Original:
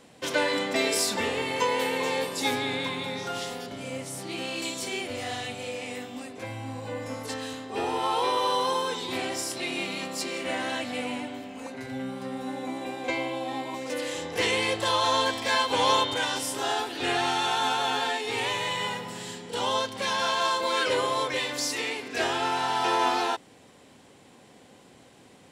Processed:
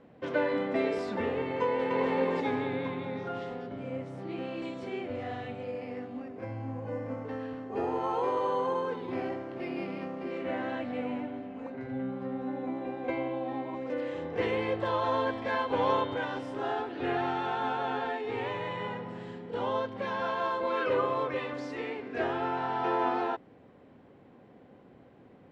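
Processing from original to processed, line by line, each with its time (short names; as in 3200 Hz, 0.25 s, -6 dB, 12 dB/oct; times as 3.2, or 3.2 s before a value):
1.63–2.13 echo throw 0.27 s, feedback 40%, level -0.5 dB
5.63–10.31 careless resampling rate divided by 6×, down filtered, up hold
20.67–21.54 small resonant body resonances 1200/2600 Hz, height 11 dB
whole clip: LPF 1300 Hz 12 dB/oct; bell 920 Hz -4.5 dB 0.85 oct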